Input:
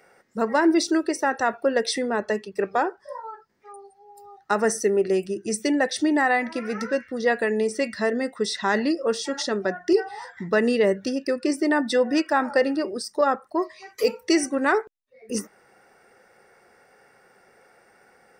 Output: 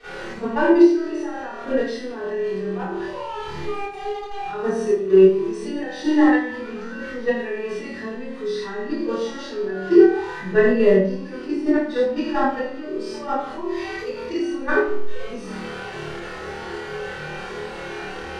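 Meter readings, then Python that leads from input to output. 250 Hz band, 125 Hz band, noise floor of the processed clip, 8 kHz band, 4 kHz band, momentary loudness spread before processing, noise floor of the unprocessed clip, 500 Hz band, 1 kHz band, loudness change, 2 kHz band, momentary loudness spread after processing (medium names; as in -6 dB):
+4.0 dB, +7.0 dB, -34 dBFS, under -10 dB, -4.5 dB, 8 LU, -59 dBFS, +3.5 dB, -1.5 dB, +1.5 dB, -1.0 dB, 16 LU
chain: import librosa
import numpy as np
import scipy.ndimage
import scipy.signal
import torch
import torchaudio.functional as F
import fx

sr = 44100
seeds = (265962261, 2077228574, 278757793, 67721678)

p1 = x + 0.5 * 10.0 ** (-27.5 / 20.0) * np.sign(x)
p2 = scipy.signal.sosfilt(scipy.signal.butter(2, 3900.0, 'lowpass', fs=sr, output='sos'), p1)
p3 = p2 + fx.room_flutter(p2, sr, wall_m=4.5, rt60_s=0.63, dry=0)
p4 = fx.level_steps(p3, sr, step_db=16)
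p5 = fx.hpss(p4, sr, part='percussive', gain_db=-13)
p6 = fx.room_shoebox(p5, sr, seeds[0], volume_m3=33.0, walls='mixed', distance_m=2.8)
y = F.gain(torch.from_numpy(p6), -11.0).numpy()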